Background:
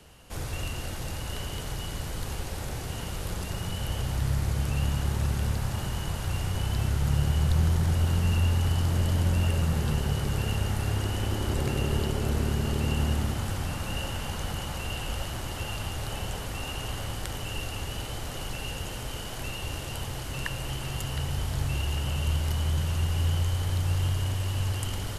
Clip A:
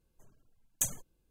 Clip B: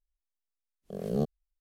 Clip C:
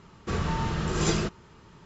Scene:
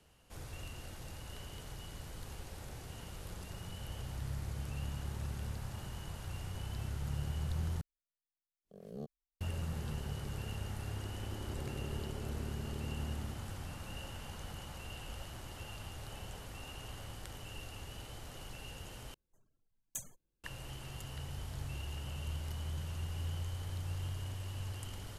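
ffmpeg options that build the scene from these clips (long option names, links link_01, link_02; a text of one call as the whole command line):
ffmpeg -i bed.wav -i cue0.wav -i cue1.wav -filter_complex "[0:a]volume=-13dB,asplit=3[link_01][link_02][link_03];[link_01]atrim=end=7.814[link_04];[2:a]atrim=end=1.6,asetpts=PTS-STARTPTS,volume=-16dB[link_05];[link_02]atrim=start=9.406:end=19.144[link_06];[1:a]atrim=end=1.3,asetpts=PTS-STARTPTS,volume=-11.5dB[link_07];[link_03]atrim=start=20.436[link_08];[link_04][link_05]acrossfade=duration=0.004:curve1=hsin:curve2=hsin[link_09];[link_09][link_06]acrossfade=duration=0.004:curve1=hsin:curve2=hsin[link_10];[link_10][link_07]acrossfade=duration=0.004:curve1=hsin:curve2=hsin[link_11];[link_11][link_08]acrossfade=duration=0.004:curve1=hsin:curve2=hsin" out.wav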